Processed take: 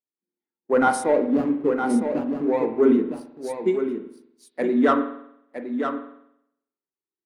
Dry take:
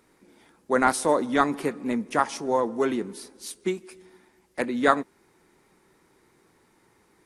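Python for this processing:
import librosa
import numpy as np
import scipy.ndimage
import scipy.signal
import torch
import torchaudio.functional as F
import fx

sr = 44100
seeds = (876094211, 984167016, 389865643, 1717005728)

y = fx.median_filter(x, sr, points=41, at=(1.03, 2.81), fade=0.02)
y = fx.low_shelf(y, sr, hz=79.0, db=-11.0)
y = fx.leveller(y, sr, passes=3)
y = y + 10.0 ** (-5.0 / 20.0) * np.pad(y, (int(962 * sr / 1000.0), 0))[:len(y)]
y = fx.rev_spring(y, sr, rt60_s=1.1, pass_ms=(45,), chirp_ms=20, drr_db=5.0)
y = fx.spectral_expand(y, sr, expansion=1.5)
y = y * librosa.db_to_amplitude(-6.0)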